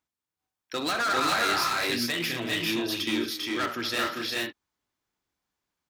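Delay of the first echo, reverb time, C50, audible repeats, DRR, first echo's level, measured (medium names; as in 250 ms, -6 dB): 67 ms, no reverb, no reverb, 5, no reverb, -12.5 dB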